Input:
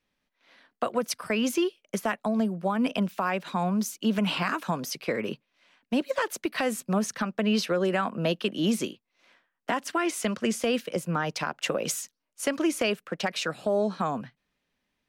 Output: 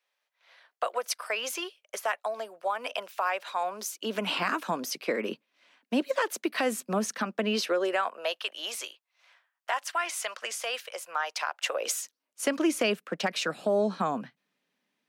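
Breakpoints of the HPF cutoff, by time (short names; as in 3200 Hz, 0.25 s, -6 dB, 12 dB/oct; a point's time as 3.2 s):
HPF 24 dB/oct
3.55 s 540 Hz
4.43 s 220 Hz
7.4 s 220 Hz
8.37 s 670 Hz
11.59 s 670 Hz
12.44 s 170 Hz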